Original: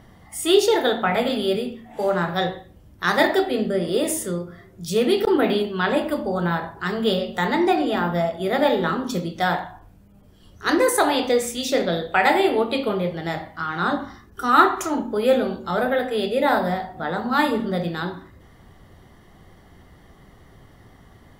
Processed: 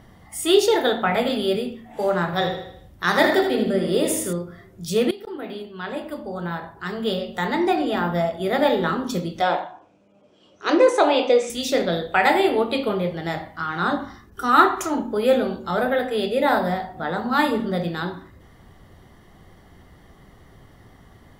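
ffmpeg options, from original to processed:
ffmpeg -i in.wav -filter_complex "[0:a]asettb=1/sr,asplit=3[link_01][link_02][link_03];[link_01]atrim=end=2.254[link_04];[link_02]atrim=start=2.25:end=4.33,asetpts=PTS-STARTPTS,afade=type=in:duration=0.004:curve=qsin,afade=type=out:start_time=2.076:duration=0.004:curve=qsin,aecho=1:1:79|158|237|316|395:0.447|0.205|0.0945|0.0435|0.02,atrim=end_sample=91728[link_05];[link_03]atrim=start=4.326[link_06];[link_04][link_05]acrossfade=duration=0.004:curve1=hsin:curve2=qsin[link_07];[link_07][link_06]acrossfade=duration=0.004:curve1=qsin:curve2=hsin,asettb=1/sr,asplit=3[link_08][link_09][link_10];[link_08]atrim=end=9.414[link_11];[link_09]atrim=start=9.41:end=11.5,asetpts=PTS-STARTPTS,afade=type=in:duration=0.004:curve=qsin,afade=type=out:start_time=2.086:duration=0.004:curve=qsin,highpass=290,equalizer=frequency=320:width_type=q:width=4:gain=4,equalizer=frequency=570:width_type=q:width=4:gain=8,equalizer=frequency=1800:width_type=q:width=4:gain=-8,equalizer=frequency=2500:width_type=q:width=4:gain=6,equalizer=frequency=4500:width_type=q:width=4:gain=-5,lowpass=frequency=6600:width=0.5412,lowpass=frequency=6600:width=1.3066[link_12];[link_10]atrim=start=11.496[link_13];[link_11][link_12]acrossfade=duration=0.004:curve1=hsin:curve2=qsin[link_14];[link_14][link_13]acrossfade=duration=0.004:curve1=qsin:curve2=hsin,asplit=2[link_15][link_16];[link_15]atrim=end=5.11,asetpts=PTS-STARTPTS,afade=type=out:start_time=5.106:duration=0.004:curve=hsin:silence=0.11885[link_17];[link_16]atrim=start=5.11,asetpts=PTS-STARTPTS,afade=type=in:duration=3.11:silence=0.11885[link_18];[link_17][link_18]concat=n=2:v=0:a=1" out.wav

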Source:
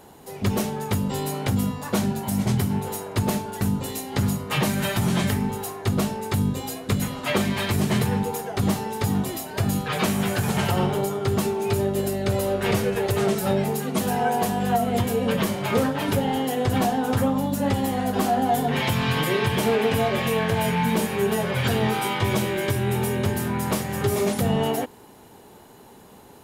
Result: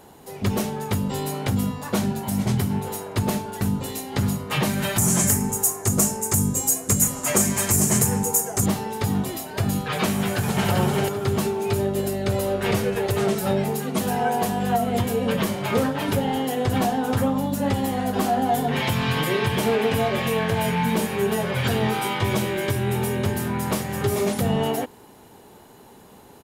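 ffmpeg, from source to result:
ffmpeg -i in.wav -filter_complex "[0:a]asettb=1/sr,asplit=3[link_01][link_02][link_03];[link_01]atrim=end=4.984[link_04];[link_02]atrim=start=4.98:end=8.66,asetpts=PTS-STARTPTS,afade=type=in:duration=0.004:curve=qsin,afade=type=out:start_time=3.676:duration=0.004:curve=qsin,highshelf=frequency=5200:width_type=q:width=3:gain=12[link_05];[link_03]atrim=start=8.656[link_06];[link_04][link_05]acrossfade=duration=0.004:curve1=hsin:curve2=qsin[link_07];[link_07][link_06]acrossfade=duration=0.004:curve1=qsin:curve2=hsin,asplit=2[link_08][link_09];[link_09]afade=type=in:start_time=10.18:duration=0.01,afade=type=out:start_time=10.69:duration=0.01,aecho=0:1:390|780|1170|1560:0.668344|0.200503|0.060151|0.0180453[link_10];[link_08][link_10]amix=inputs=2:normalize=0" out.wav

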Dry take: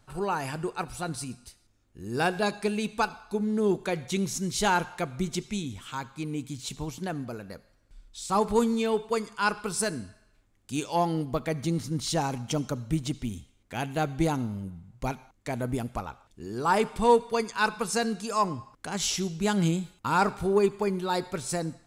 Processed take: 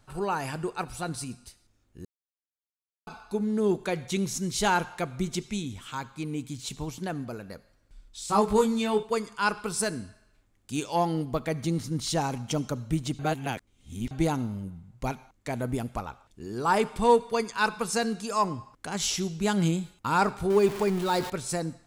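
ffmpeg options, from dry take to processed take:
ffmpeg -i in.wav -filter_complex "[0:a]asettb=1/sr,asplit=3[link_01][link_02][link_03];[link_01]atrim=end=8.264[link_04];[link_02]atrim=start=8.26:end=9.03,asetpts=PTS-STARTPTS,afade=type=in:duration=0.004:curve=qsin,afade=type=out:start_time=0.766:duration=0.004:curve=qsin,asplit=2[link_05][link_06];[link_06]adelay=19,volume=-3dB[link_07];[link_05][link_07]amix=inputs=2:normalize=0,atrim=end_sample=33957[link_08];[link_03]atrim=start=9.026[link_09];[link_04][link_08]acrossfade=duration=0.004:curve1=hsin:curve2=qsin[link_10];[link_10][link_09]acrossfade=duration=0.004:curve1=qsin:curve2=hsin,asettb=1/sr,asplit=3[link_11][link_12][link_13];[link_11]atrim=end=20.504[link_14];[link_12]atrim=start=20.5:end=21.3,asetpts=PTS-STARTPTS,afade=type=in:duration=0.004:curve=qsin,afade=type=out:start_time=0.796:duration=0.004:curve=qsin,aeval=exprs='val(0)+0.5*0.0266*sgn(val(0))':channel_layout=same[link_15];[link_13]atrim=start=21.296[link_16];[link_14][link_15]acrossfade=duration=0.004:curve1=hsin:curve2=qsin[link_17];[link_17][link_16]acrossfade=duration=0.004:curve1=qsin:curve2=hsin,asplit=5[link_18][link_19][link_20][link_21][link_22];[link_18]atrim=end=2.05,asetpts=PTS-STARTPTS,afade=type=out:start_time=2.046:duration=0.004:curve=hsin[link_23];[link_19]atrim=start=2.05:end=3.07,asetpts=PTS-STARTPTS,volume=0[link_24];[link_20]atrim=start=3.07:end=13.192,asetpts=PTS-STARTPTS,afade=type=in:duration=0.004:curve=hsin[link_25];[link_21]atrim=start=13.188:end=14.112,asetpts=PTS-STARTPTS,areverse[link_26];[link_22]atrim=start=14.108[link_27];[link_23][link_24][link_25]concat=n=3:v=0:a=1[link_28];[link_28][link_26]acrossfade=duration=0.004:curve1=hsin:curve2=hsin[link_29];[link_29][link_27]acrossfade=duration=0.004:curve1=hsin:curve2=hsin" out.wav

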